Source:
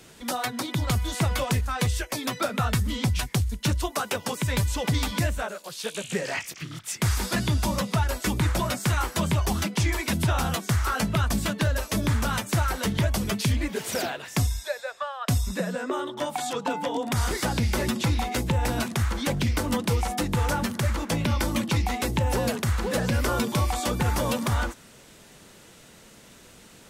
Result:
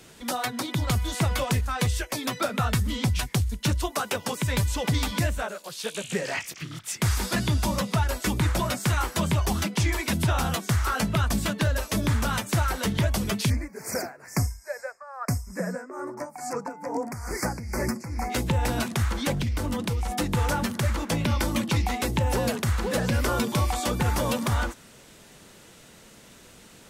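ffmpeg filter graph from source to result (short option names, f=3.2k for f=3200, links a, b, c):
-filter_complex "[0:a]asettb=1/sr,asplit=3[a][b][c];[a]atrim=end=13.504[d];[b]atrim=start=13.5:end=18.3,asetpts=PTS-STARTPTS,afade=t=in:d=0.004:c=qsin,afade=t=out:st=4.796:d=0.004:c=qsin,tremolo=f=2.3:d=0.78,asuperstop=centerf=3300:order=8:qfactor=1.4[e];[c]atrim=start=18.296[f];[d][e]acrossfade=d=0.004:c1=hsin:c2=qsin[g];[g][f]acrossfade=d=0.004:c1=qsin:c2=hsin,asettb=1/sr,asplit=3[h][i][j];[h]atrim=end=19.404[k];[i]atrim=start=19.4:end=20.12,asetpts=PTS-STARTPTS,afade=t=in:d=0.004:c=qsin,afade=t=out:st=0.716:d=0.004:c=qsin,lowshelf=f=120:g=8,acompressor=threshold=-23dB:ratio=10:attack=3.2:release=140:knee=1:detection=peak[l];[j]atrim=start=20.116[m];[k][l]acrossfade=d=0.004:c1=hsin:c2=qsin[n];[n][m]acrossfade=d=0.004:c1=qsin:c2=hsin"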